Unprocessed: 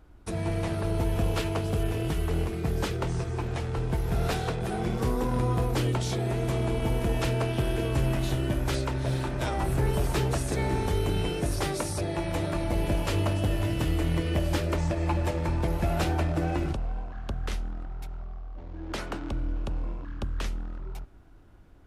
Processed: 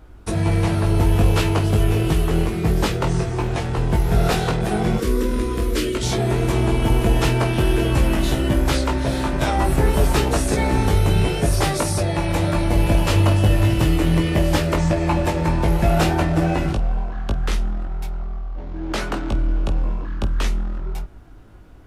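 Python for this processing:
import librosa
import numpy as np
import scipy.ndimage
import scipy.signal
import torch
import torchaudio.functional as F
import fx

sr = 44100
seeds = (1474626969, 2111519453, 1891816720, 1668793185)

p1 = fx.fixed_phaser(x, sr, hz=330.0, stages=4, at=(4.98, 6.03))
p2 = p1 + fx.room_early_taps(p1, sr, ms=(19, 49), db=(-4.0, -17.5), dry=0)
y = F.gain(torch.from_numpy(p2), 8.0).numpy()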